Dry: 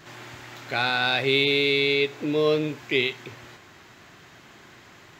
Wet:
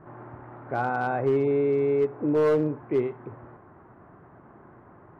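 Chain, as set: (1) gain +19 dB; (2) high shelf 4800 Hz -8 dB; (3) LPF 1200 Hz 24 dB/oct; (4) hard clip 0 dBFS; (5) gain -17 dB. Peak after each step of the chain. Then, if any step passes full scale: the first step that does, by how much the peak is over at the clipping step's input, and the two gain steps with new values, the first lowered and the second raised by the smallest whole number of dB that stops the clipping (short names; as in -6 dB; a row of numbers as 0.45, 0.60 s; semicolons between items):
+11.0, +9.5, +6.5, 0.0, -17.0 dBFS; step 1, 6.5 dB; step 1 +12 dB, step 5 -10 dB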